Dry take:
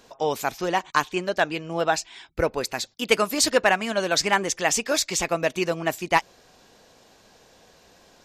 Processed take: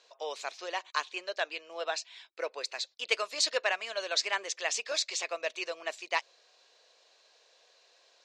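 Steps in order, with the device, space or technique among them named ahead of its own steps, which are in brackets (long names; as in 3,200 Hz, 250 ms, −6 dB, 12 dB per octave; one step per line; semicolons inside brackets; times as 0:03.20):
phone speaker on a table (loudspeaker in its box 500–7,500 Hz, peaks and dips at 820 Hz −7 dB, 1,400 Hz −3 dB, 2,600 Hz +3 dB, 4,100 Hz +7 dB)
level −8.5 dB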